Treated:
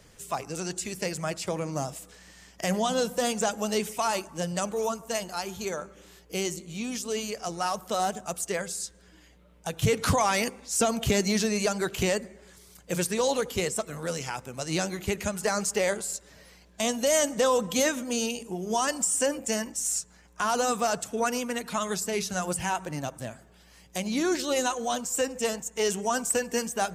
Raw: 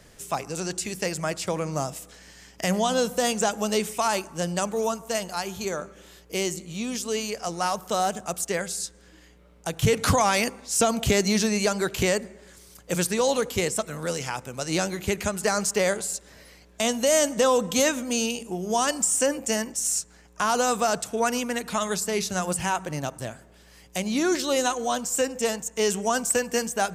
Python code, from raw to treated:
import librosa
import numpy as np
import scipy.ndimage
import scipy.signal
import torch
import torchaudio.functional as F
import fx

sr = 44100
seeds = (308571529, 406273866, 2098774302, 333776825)

y = fx.spec_quant(x, sr, step_db=15)
y = y * 10.0 ** (-2.5 / 20.0)